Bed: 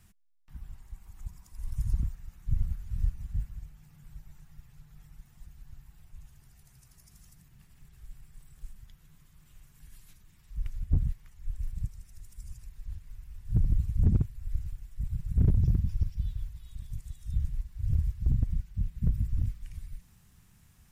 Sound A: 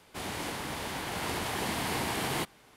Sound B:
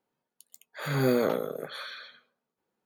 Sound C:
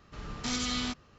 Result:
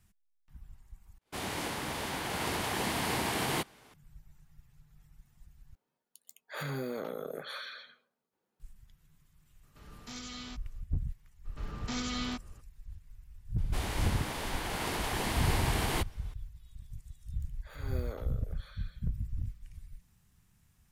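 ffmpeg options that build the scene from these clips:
ffmpeg -i bed.wav -i cue0.wav -i cue1.wav -i cue2.wav -filter_complex "[1:a]asplit=2[link_01][link_02];[2:a]asplit=2[link_03][link_04];[3:a]asplit=2[link_05][link_06];[0:a]volume=-7dB[link_07];[link_01]agate=range=-35dB:threshold=-55dB:ratio=16:release=487:detection=peak[link_08];[link_03]acompressor=threshold=-31dB:ratio=6:attack=3.2:release=140:knee=1:detection=peak[link_09];[link_06]highshelf=frequency=3000:gain=-6.5[link_10];[link_04]equalizer=frequency=140:width=1.5:gain=-6.5[link_11];[link_07]asplit=3[link_12][link_13][link_14];[link_12]atrim=end=1.184[link_15];[link_08]atrim=end=2.76[link_16];[link_13]atrim=start=3.936:end=5.754[link_17];[link_09]atrim=end=2.85,asetpts=PTS-STARTPTS,volume=-2dB[link_18];[link_14]atrim=start=8.596[link_19];[link_05]atrim=end=1.18,asetpts=PTS-STARTPTS,volume=-11.5dB,afade=type=in:duration=0.004:curve=hsin,afade=type=out:start_time=1.176:duration=0.004:curve=hsin,adelay=9630[link_20];[link_10]atrim=end=1.18,asetpts=PTS-STARTPTS,volume=-1.5dB,afade=type=in:duration=0.02,afade=type=out:start_time=1.16:duration=0.02,adelay=11440[link_21];[link_02]atrim=end=2.76,asetpts=PTS-STARTPTS,volume=-1dB,afade=type=in:duration=0.004:curve=hsin,afade=type=out:start_time=2.756:duration=0.004:curve=hsin,adelay=13580[link_22];[link_11]atrim=end=2.85,asetpts=PTS-STARTPTS,volume=-16.5dB,afade=type=in:duration=0.004:curve=hsin,afade=type=out:start_time=2.846:duration=0.004:curve=hsin,adelay=16880[link_23];[link_15][link_16]acrossfade=duration=0.004:curve1=hsin:curve2=hsin[link_24];[link_24][link_17]acrossfade=duration=0.004:curve1=hsin:curve2=hsin[link_25];[link_25][link_18]acrossfade=duration=0.004:curve1=hsin:curve2=hsin[link_26];[link_26][link_19]acrossfade=duration=0.004:curve1=hsin:curve2=hsin[link_27];[link_27][link_20][link_21][link_22][link_23]amix=inputs=5:normalize=0" out.wav

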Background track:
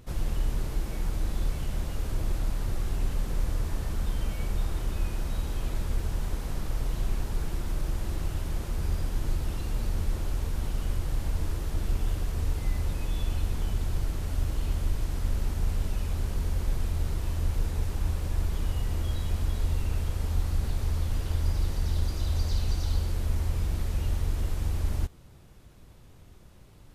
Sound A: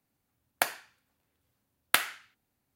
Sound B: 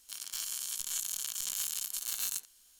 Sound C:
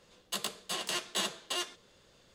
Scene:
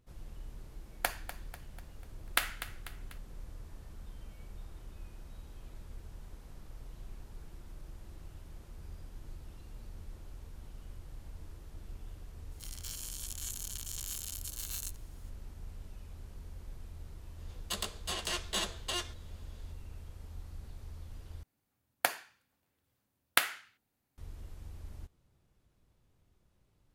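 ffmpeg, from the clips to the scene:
ffmpeg -i bed.wav -i cue0.wav -i cue1.wav -i cue2.wav -filter_complex "[1:a]asplit=2[link_01][link_02];[0:a]volume=-18.5dB[link_03];[link_01]aecho=1:1:246|492|738|984|1230:0.224|0.11|0.0538|0.0263|0.0129[link_04];[link_03]asplit=2[link_05][link_06];[link_05]atrim=end=21.434[link_07];[link_02]atrim=end=2.75,asetpts=PTS-STARTPTS,volume=-2.5dB[link_08];[link_06]atrim=start=24.176[link_09];[link_04]atrim=end=2.75,asetpts=PTS-STARTPTS,volume=-5.5dB,afade=type=in:duration=0.004:curve=hsin,afade=type=out:start_time=2.746:duration=0.004:curve=hsin,adelay=430[link_10];[2:a]atrim=end=2.79,asetpts=PTS-STARTPTS,volume=-6dB,afade=type=in:duration=0.004:curve=hsin,afade=type=out:start_time=2.786:duration=0.004:curve=hsin,adelay=12510[link_11];[3:a]atrim=end=2.34,asetpts=PTS-STARTPTS,volume=-1.5dB,afade=type=in:duration=0.004:curve=hsin,afade=type=out:start_time=2.336:duration=0.004:curve=hsin,adelay=17380[link_12];[link_07][link_08]acrossfade=duration=0.004:curve1=hsin:curve2=hsin[link_13];[link_13][link_09]acrossfade=duration=0.004:curve1=hsin:curve2=hsin[link_14];[link_14][link_10][link_11][link_12]amix=inputs=4:normalize=0" out.wav

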